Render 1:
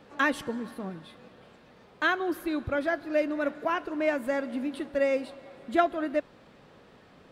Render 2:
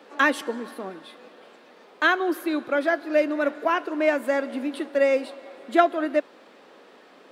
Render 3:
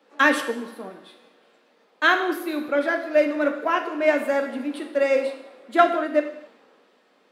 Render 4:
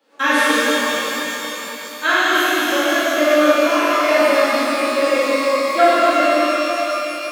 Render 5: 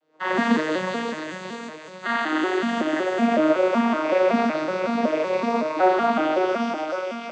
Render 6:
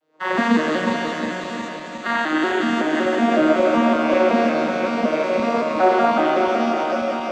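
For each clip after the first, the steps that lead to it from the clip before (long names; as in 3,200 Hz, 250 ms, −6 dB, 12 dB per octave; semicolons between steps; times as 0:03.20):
high-pass filter 270 Hz 24 dB per octave; level +5.5 dB
reverb whose tail is shaped and stops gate 300 ms falling, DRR 4.5 dB; multiband upward and downward expander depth 40%
high-shelf EQ 4,600 Hz +7.5 dB; reverb with rising layers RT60 3.9 s, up +12 semitones, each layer −8 dB, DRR −11.5 dB; level −5.5 dB
vocoder with an arpeggio as carrier minor triad, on D#3, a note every 187 ms; level −5 dB
feedback delay that plays each chunk backwards 180 ms, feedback 77%, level −7 dB; in parallel at −10.5 dB: dead-zone distortion −39.5 dBFS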